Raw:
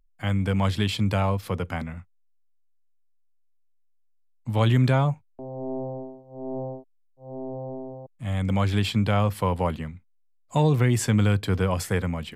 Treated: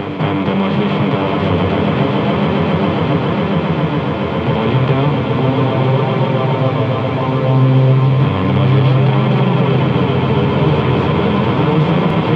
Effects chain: per-bin compression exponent 0.2; swelling echo 0.137 s, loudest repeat 8, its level -8.5 dB; limiter -5 dBFS, peak gain reduction 4.5 dB; bell 380 Hz -6 dB 0.94 oct; chorus voices 2, 0.32 Hz, delay 10 ms, depth 4.9 ms; speaker cabinet 110–3200 Hz, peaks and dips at 150 Hz +9 dB, 300 Hz +8 dB, 420 Hz +10 dB, 1600 Hz -6 dB; reverse echo 0.25 s -9.5 dB; three-band squash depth 40%; gain +2.5 dB

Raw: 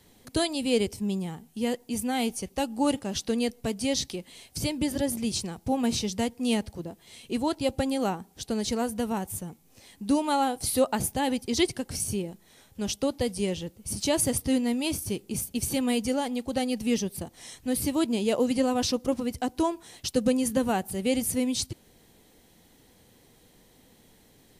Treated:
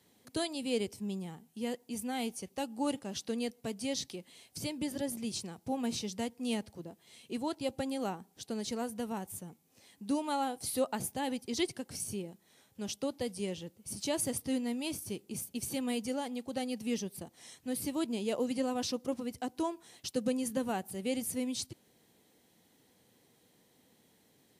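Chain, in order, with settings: HPF 120 Hz 12 dB/oct; gain -8 dB

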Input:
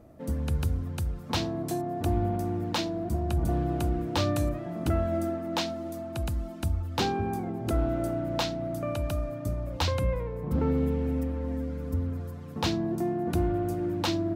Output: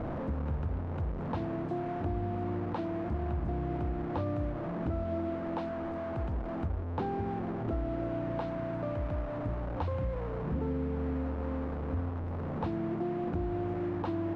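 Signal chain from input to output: delta modulation 64 kbps, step -27 dBFS; LPF 1100 Hz 12 dB/oct; compressor, threshold -27 dBFS, peak gain reduction 5.5 dB; gain -2 dB

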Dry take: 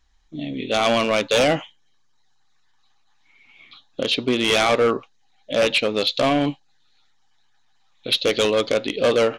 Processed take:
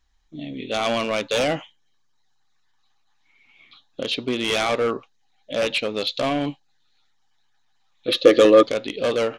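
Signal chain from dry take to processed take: 8.07–8.63 small resonant body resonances 330/500/1200/1700 Hz, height 16 dB, ringing for 35 ms; gain -4 dB

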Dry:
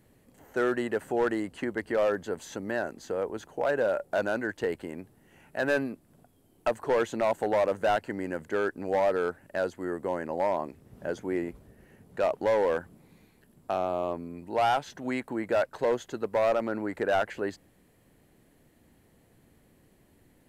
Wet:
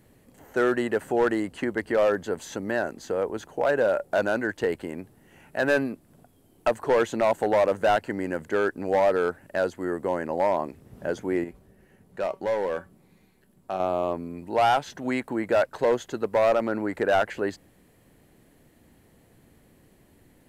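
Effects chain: 11.44–13.8 resonator 190 Hz, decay 0.19 s, harmonics all, mix 60%; gain +4 dB

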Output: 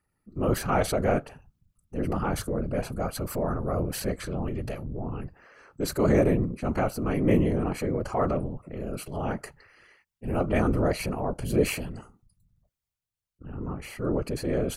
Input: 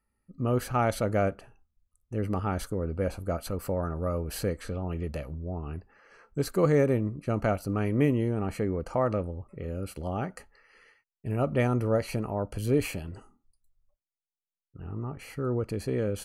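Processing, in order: tempo 1.1×; whisperiser; transient shaper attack -4 dB, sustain +3 dB; gain +2.5 dB

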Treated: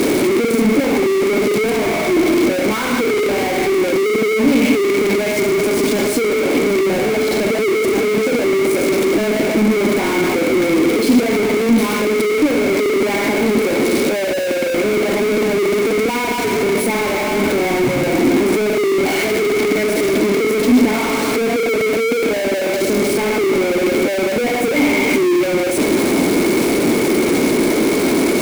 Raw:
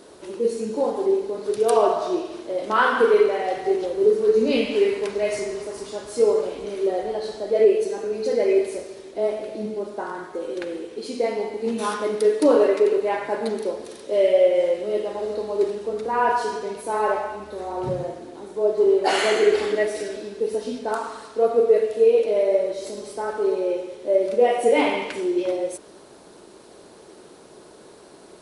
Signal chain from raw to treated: infinite clipping; small resonant body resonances 260/2200 Hz, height 16 dB, ringing for 25 ms

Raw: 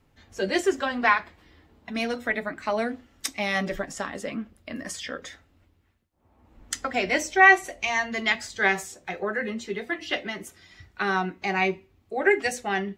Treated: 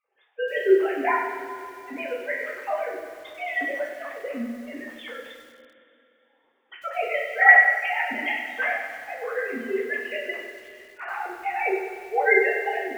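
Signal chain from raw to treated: sine-wave speech; two-slope reverb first 0.37 s, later 3.1 s, from -16 dB, DRR -5 dB; lo-fi delay 96 ms, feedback 55%, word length 7-bit, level -7.5 dB; gain -6 dB

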